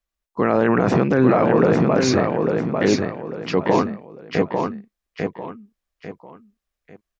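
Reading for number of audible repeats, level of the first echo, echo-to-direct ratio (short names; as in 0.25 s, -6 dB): 3, -4.0 dB, -3.5 dB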